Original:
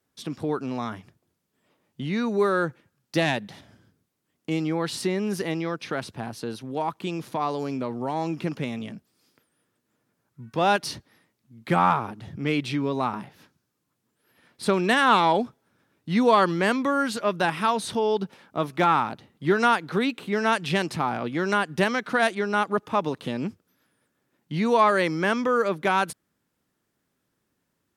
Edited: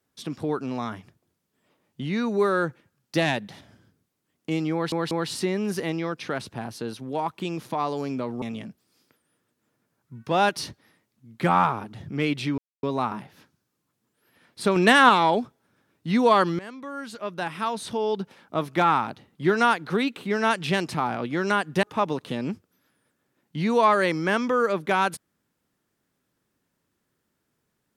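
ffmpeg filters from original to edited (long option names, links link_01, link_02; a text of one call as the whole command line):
ffmpeg -i in.wav -filter_complex "[0:a]asplit=9[link_01][link_02][link_03][link_04][link_05][link_06][link_07][link_08][link_09];[link_01]atrim=end=4.922[link_10];[link_02]atrim=start=4.728:end=4.922[link_11];[link_03]atrim=start=4.728:end=8.042[link_12];[link_04]atrim=start=8.688:end=12.85,asetpts=PTS-STARTPTS,afade=type=out:start_time=4.158:duration=0.004:curve=hsin,apad=pad_dur=0.25[link_13];[link_05]atrim=start=12.85:end=14.782,asetpts=PTS-STARTPTS,afade=type=in:duration=0.004:curve=hsin[link_14];[link_06]atrim=start=14.778:end=15.112,asetpts=PTS-STARTPTS,volume=4.5dB[link_15];[link_07]atrim=start=15.108:end=16.61,asetpts=PTS-STARTPTS,afade=type=out:start_time=1.498:duration=0.004:curve=hsin:silence=0.1[link_16];[link_08]atrim=start=16.61:end=21.852,asetpts=PTS-STARTPTS,afade=type=in:duration=1.96:silence=0.1[link_17];[link_09]atrim=start=22.788[link_18];[link_10][link_11]acrossfade=duration=0.004:curve1=hsin:curve2=hsin[link_19];[link_19][link_12]acrossfade=duration=0.004:curve1=hsin:curve2=hsin[link_20];[link_13][link_14]concat=n=2:v=0:a=1[link_21];[link_20][link_21]acrossfade=duration=0.004:curve1=hsin:curve2=hsin[link_22];[link_22][link_15]acrossfade=duration=0.004:curve1=hsin:curve2=hsin[link_23];[link_16][link_17]concat=n=2:v=0:a=1[link_24];[link_23][link_24]acrossfade=duration=0.004:curve1=hsin:curve2=hsin[link_25];[link_25][link_18]acrossfade=duration=0.004:curve1=hsin:curve2=hsin" out.wav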